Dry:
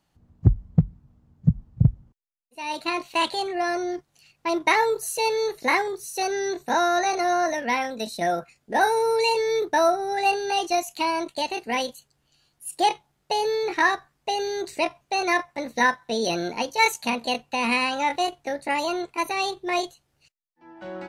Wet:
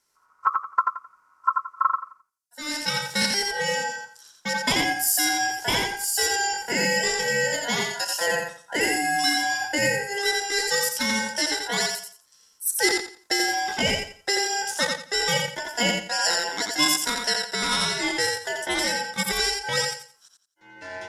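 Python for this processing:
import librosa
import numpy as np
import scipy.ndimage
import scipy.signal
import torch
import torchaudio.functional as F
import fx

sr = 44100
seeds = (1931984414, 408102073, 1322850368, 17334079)

p1 = scipy.signal.sosfilt(scipy.signal.butter(2, 85.0, 'highpass', fs=sr, output='sos'), x)
p2 = fx.rider(p1, sr, range_db=10, speed_s=0.5)
p3 = p1 + (p2 * 10.0 ** (2.5 / 20.0))
p4 = p3 * np.sin(2.0 * np.pi * 1200.0 * np.arange(len(p3)) / sr)
p5 = fx.band_shelf(p4, sr, hz=7800.0, db=13.0, octaves=1.7)
p6 = p5 + fx.echo_feedback(p5, sr, ms=87, feedback_pct=26, wet_db=-4.0, dry=0)
y = p6 * 10.0 ** (-8.0 / 20.0)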